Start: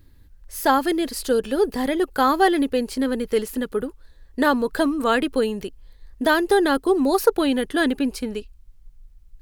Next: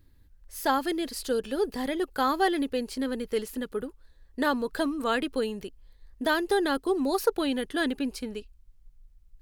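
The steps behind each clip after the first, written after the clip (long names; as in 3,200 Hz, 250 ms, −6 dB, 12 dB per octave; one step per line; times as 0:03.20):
dynamic equaliser 4,200 Hz, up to +3 dB, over −40 dBFS, Q 0.7
level −7.5 dB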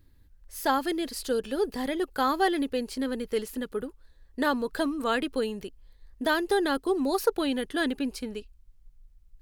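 no processing that can be heard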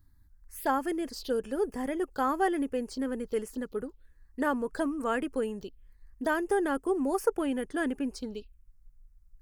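phaser swept by the level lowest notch 440 Hz, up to 4,000 Hz, full sweep at −27.5 dBFS
level −2 dB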